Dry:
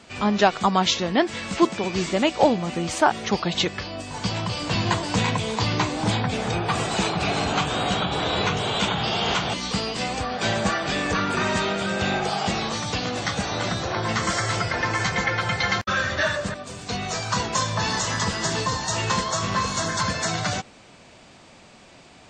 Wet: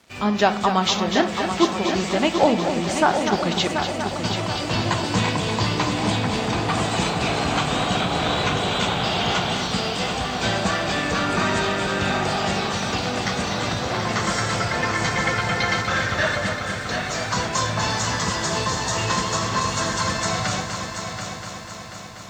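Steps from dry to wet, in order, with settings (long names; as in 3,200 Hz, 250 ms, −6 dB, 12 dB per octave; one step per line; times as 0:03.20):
echo machine with several playback heads 244 ms, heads first and third, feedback 67%, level −8.5 dB
on a send at −11.5 dB: convolution reverb RT60 0.40 s, pre-delay 27 ms
on the sum: dead-zone distortion −50 dBFS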